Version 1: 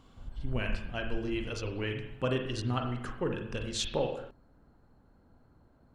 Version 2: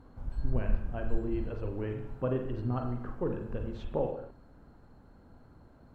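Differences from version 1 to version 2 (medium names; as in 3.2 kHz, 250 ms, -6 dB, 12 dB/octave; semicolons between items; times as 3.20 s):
speech: add low-pass 1 kHz 12 dB/octave; background +6.0 dB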